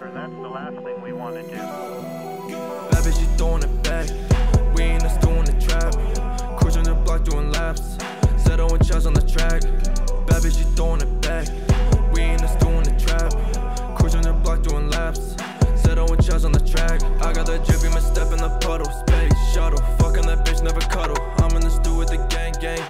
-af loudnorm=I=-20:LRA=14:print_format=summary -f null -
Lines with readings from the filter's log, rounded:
Input Integrated:    -21.7 LUFS
Input True Peak:      -7.3 dBTP
Input LRA:             1.4 LU
Input Threshold:     -31.8 LUFS